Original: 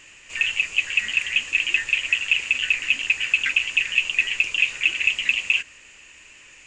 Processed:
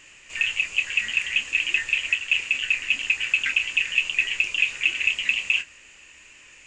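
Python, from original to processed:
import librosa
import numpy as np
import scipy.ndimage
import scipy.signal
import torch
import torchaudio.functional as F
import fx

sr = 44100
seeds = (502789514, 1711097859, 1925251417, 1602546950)

y = fx.doubler(x, sr, ms=27.0, db=-10.5)
y = fx.band_widen(y, sr, depth_pct=40, at=(2.15, 2.96))
y = F.gain(torch.from_numpy(y), -2.0).numpy()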